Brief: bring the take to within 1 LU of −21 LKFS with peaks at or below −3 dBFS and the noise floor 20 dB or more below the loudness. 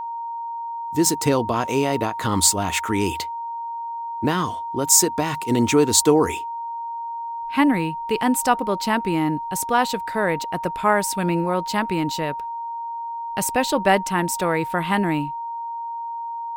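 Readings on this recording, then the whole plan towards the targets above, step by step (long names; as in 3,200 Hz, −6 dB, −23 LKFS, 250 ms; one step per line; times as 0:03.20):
interfering tone 930 Hz; level of the tone −27 dBFS; integrated loudness −22.0 LKFS; sample peak −1.5 dBFS; target loudness −21.0 LKFS
→ notch filter 930 Hz, Q 30
level +1 dB
brickwall limiter −3 dBFS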